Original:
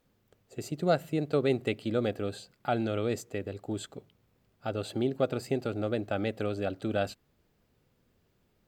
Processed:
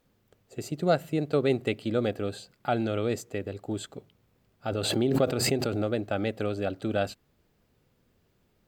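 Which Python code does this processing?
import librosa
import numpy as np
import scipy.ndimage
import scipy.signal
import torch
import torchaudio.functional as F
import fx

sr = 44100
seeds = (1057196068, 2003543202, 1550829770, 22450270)

y = fx.pre_swell(x, sr, db_per_s=31.0, at=(4.7, 5.92))
y = F.gain(torch.from_numpy(y), 2.0).numpy()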